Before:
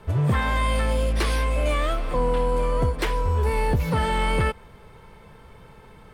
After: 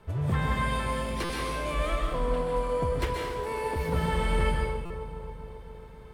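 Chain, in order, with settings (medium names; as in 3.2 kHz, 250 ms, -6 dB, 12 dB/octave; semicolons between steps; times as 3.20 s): 2.92–3.76 s: high-pass 260 Hz 24 dB/octave; bucket-brigade echo 270 ms, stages 2048, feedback 70%, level -11 dB; reverberation, pre-delay 120 ms, DRR 0.5 dB; buffer glitch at 1.24/4.85 s, samples 256, times 8; trim -8 dB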